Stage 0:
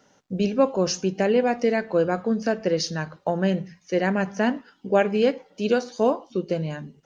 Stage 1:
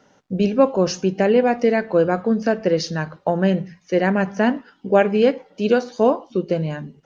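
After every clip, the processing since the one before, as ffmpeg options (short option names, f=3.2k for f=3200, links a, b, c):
-af "lowpass=f=3.5k:p=1,volume=4.5dB"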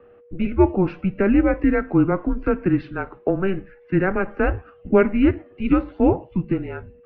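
-filter_complex "[0:a]acrossover=split=110|1400[a][b][c];[a]aeval=exprs='0.0335*sin(PI/2*3.16*val(0)/0.0335)':c=same[d];[d][b][c]amix=inputs=3:normalize=0,aeval=exprs='val(0)+0.00398*sin(2*PI*670*n/s)':c=same,highpass=f=260:t=q:w=0.5412,highpass=f=260:t=q:w=1.307,lowpass=f=2.8k:t=q:w=0.5176,lowpass=f=2.8k:t=q:w=0.7071,lowpass=f=2.8k:t=q:w=1.932,afreqshift=-190"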